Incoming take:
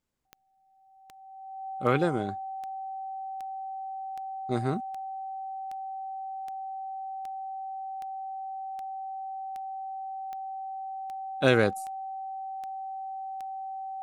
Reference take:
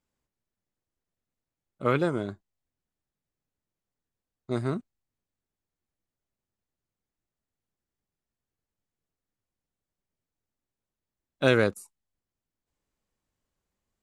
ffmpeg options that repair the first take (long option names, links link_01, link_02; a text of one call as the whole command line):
ffmpeg -i in.wav -af "adeclick=threshold=4,bandreject=frequency=770:width=30" out.wav